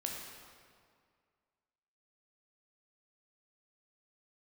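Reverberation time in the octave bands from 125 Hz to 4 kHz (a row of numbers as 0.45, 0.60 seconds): 2.1, 2.1, 2.1, 2.0, 1.8, 1.5 seconds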